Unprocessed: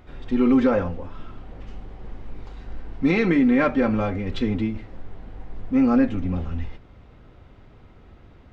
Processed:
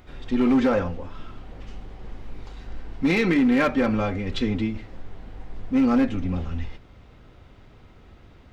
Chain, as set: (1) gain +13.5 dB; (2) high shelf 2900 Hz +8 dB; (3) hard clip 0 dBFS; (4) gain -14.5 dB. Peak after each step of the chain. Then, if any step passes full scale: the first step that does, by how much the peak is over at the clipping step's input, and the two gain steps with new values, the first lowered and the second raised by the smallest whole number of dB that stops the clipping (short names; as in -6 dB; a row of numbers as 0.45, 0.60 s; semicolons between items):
+4.5, +5.0, 0.0, -14.5 dBFS; step 1, 5.0 dB; step 1 +8.5 dB, step 4 -9.5 dB